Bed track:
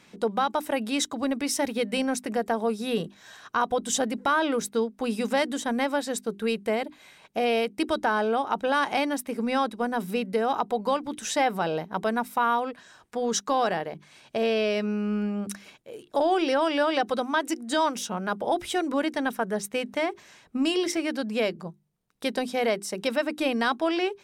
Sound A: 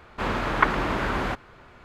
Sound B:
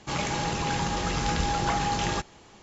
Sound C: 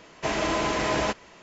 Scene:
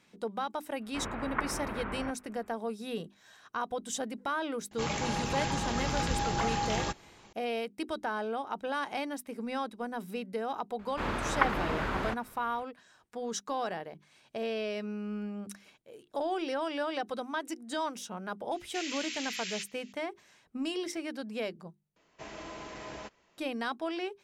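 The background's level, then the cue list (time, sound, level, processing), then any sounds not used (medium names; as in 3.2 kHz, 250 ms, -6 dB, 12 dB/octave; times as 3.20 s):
bed track -9.5 dB
0.76 s: add A -12 dB, fades 0.10 s + low-pass 2.5 kHz 24 dB/octave
4.71 s: add B -4.5 dB
10.79 s: add A -6.5 dB
18.51 s: add C -3.5 dB + inverse Chebyshev high-pass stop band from 690 Hz, stop band 60 dB
21.96 s: replace with C -18 dB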